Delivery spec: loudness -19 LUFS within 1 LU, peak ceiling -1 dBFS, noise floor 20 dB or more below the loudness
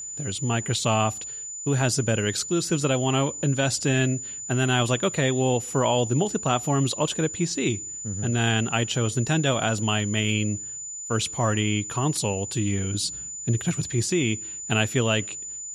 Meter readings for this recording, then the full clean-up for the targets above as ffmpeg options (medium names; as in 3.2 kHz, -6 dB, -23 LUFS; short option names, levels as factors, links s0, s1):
steady tone 7 kHz; tone level -33 dBFS; loudness -24.5 LUFS; peak level -8.0 dBFS; loudness target -19.0 LUFS
-> -af "bandreject=f=7000:w=30"
-af "volume=1.88"